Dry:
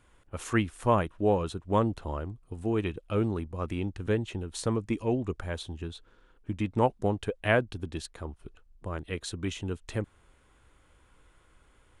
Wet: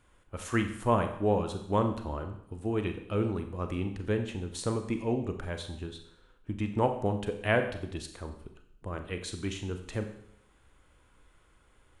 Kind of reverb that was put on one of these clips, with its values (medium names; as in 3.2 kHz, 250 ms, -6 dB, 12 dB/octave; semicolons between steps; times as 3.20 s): Schroeder reverb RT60 0.7 s, combs from 30 ms, DRR 6.5 dB; trim -2 dB